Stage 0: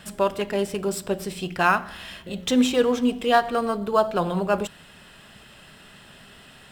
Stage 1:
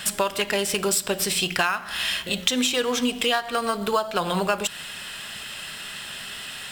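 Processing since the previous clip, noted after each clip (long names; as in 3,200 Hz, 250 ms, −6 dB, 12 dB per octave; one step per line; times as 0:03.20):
tilt shelving filter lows −8 dB, about 1,100 Hz
downward compressor 16 to 1, threshold −28 dBFS, peak gain reduction 16 dB
level +9 dB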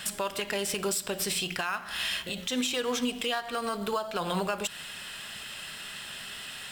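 brickwall limiter −14.5 dBFS, peak gain reduction 9.5 dB
level −5 dB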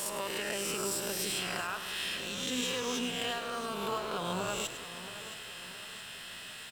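peak hold with a rise ahead of every peak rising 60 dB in 1.23 s
echo with shifted repeats 103 ms, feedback 37%, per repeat −68 Hz, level −11 dB
feedback echo at a low word length 670 ms, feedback 55%, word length 8 bits, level −13 dB
level −8 dB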